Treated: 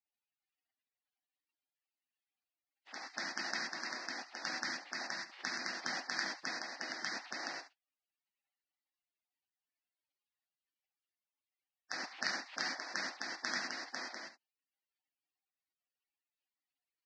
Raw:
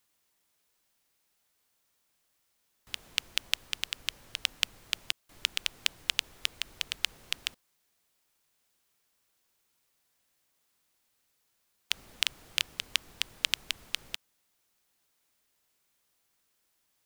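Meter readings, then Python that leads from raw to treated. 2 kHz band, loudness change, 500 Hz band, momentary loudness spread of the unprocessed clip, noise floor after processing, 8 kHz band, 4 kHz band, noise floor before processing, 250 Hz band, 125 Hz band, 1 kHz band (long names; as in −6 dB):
−1.5 dB, −6.5 dB, +7.0 dB, 6 LU, below −85 dBFS, −7.5 dB, −11.5 dB, −76 dBFS, +9.5 dB, −5.5 dB, +6.0 dB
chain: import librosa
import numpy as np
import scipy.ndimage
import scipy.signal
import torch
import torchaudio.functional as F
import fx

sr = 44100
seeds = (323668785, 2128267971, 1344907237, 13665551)

y = fx.envelope_sharpen(x, sr, power=2.0)
y = fx.room_early_taps(y, sr, ms=(29, 70), db=(-17.5, -13.0))
y = fx.rev_gated(y, sr, seeds[0], gate_ms=150, shape='flat', drr_db=-3.0)
y = fx.spec_gate(y, sr, threshold_db=-25, keep='weak')
y = fx.cabinet(y, sr, low_hz=210.0, low_slope=24, high_hz=4800.0, hz=(280.0, 440.0, 760.0, 1900.0, 2700.0, 4700.0), db=(4, -9, 8, 6, 7, 4))
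y = F.gain(torch.from_numpy(y), 10.5).numpy()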